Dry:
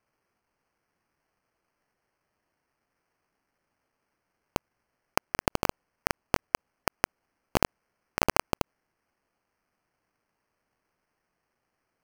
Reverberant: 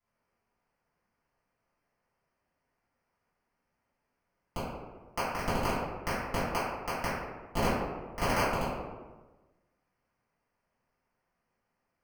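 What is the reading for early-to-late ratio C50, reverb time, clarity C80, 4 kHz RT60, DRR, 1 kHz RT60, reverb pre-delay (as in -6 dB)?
-1.0 dB, 1.3 s, 1.5 dB, 0.70 s, -15.5 dB, 1.2 s, 3 ms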